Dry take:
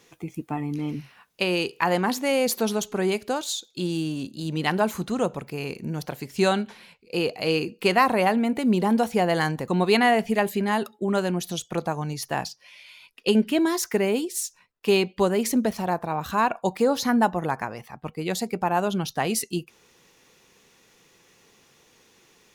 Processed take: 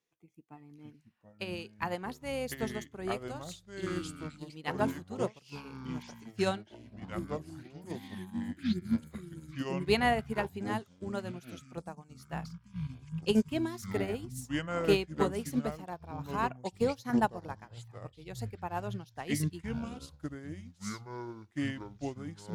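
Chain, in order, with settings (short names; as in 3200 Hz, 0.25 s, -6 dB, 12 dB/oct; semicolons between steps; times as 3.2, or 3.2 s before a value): spectral delete 6.95–9.88, 380–6100 Hz; echoes that change speed 0.521 s, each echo -6 st, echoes 3; upward expander 2.5:1, over -32 dBFS; gain -5 dB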